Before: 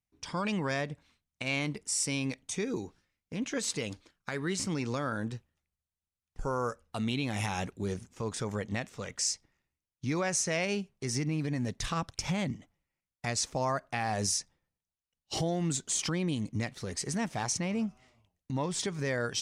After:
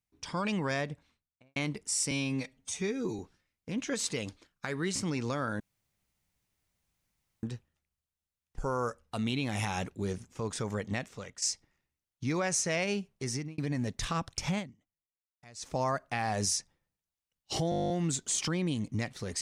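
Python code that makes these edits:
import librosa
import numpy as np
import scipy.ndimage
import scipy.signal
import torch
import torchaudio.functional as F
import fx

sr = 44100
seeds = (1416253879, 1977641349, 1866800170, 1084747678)

y = fx.studio_fade_out(x, sr, start_s=0.88, length_s=0.68)
y = fx.edit(y, sr, fx.stretch_span(start_s=2.11, length_s=0.72, factor=1.5),
    fx.insert_room_tone(at_s=5.24, length_s=1.83),
    fx.fade_out_to(start_s=8.85, length_s=0.38, floor_db=-11.5),
    fx.fade_out_span(start_s=10.95, length_s=0.44, curve='qsin'),
    fx.fade_down_up(start_s=12.39, length_s=1.09, db=-21.5, fade_s=0.47, curve='exp'),
    fx.stutter(start_s=15.51, slice_s=0.02, count=11), tone=tone)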